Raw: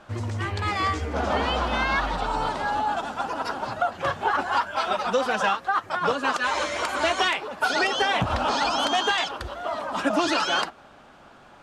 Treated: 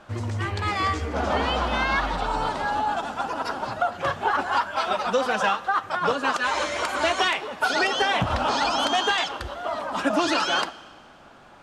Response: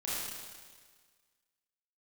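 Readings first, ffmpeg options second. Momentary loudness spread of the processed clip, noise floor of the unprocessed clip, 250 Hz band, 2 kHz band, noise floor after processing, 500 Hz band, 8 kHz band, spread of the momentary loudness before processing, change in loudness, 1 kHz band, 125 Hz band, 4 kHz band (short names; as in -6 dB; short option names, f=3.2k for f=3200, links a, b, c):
7 LU, -50 dBFS, +0.5 dB, +0.5 dB, -49 dBFS, +0.5 dB, +0.5 dB, 7 LU, +0.5 dB, +0.5 dB, +0.5 dB, +0.5 dB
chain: -filter_complex "[0:a]asplit=2[a][b];[1:a]atrim=start_sample=2205[c];[b][c]afir=irnorm=-1:irlink=0,volume=-21dB[d];[a][d]amix=inputs=2:normalize=0"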